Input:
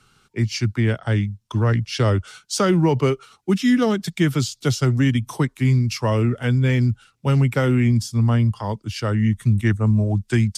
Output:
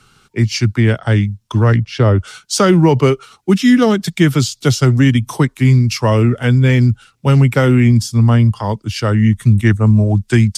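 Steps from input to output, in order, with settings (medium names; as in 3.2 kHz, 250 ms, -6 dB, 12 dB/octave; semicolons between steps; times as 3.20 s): 1.76–2.18 s: low-pass 2.2 kHz -> 1.2 kHz 6 dB/octave; trim +7 dB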